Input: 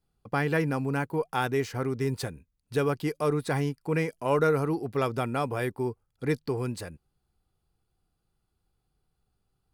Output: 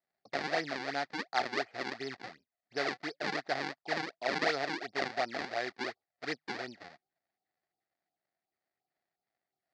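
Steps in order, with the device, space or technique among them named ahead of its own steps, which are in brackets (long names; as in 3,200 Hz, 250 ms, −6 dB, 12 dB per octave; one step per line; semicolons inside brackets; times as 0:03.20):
adaptive Wiener filter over 25 samples
circuit-bent sampling toy (sample-and-hold swept by an LFO 40×, swing 160% 2.8 Hz; loudspeaker in its box 460–5,100 Hz, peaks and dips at 470 Hz −7 dB, 700 Hz +10 dB, 1,000 Hz −8 dB, 1,900 Hz +9 dB, 3,000 Hz −5 dB, 4,600 Hz +7 dB)
level −3 dB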